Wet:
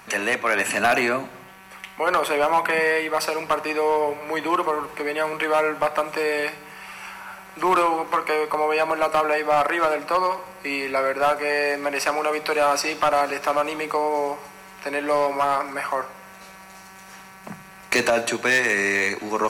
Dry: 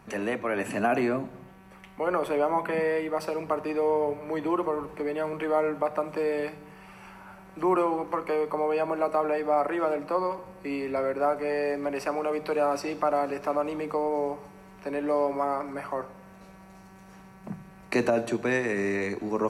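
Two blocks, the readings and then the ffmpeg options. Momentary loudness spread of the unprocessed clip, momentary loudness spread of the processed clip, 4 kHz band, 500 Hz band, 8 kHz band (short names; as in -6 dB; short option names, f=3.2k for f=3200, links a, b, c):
11 LU, 16 LU, +15.5 dB, +3.5 dB, n/a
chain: -af "tiltshelf=f=680:g=-9.5,asoftclip=type=hard:threshold=-19dB,volume=6dB"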